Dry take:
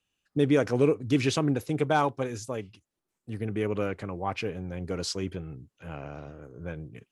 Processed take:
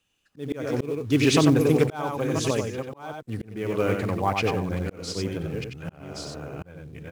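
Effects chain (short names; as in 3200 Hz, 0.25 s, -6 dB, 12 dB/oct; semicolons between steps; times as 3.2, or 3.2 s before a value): reverse delay 0.627 s, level -8 dB; in parallel at -5 dB: short-mantissa float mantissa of 2-bit; on the sum: echo 92 ms -6 dB; auto swell 0.524 s; gain +2.5 dB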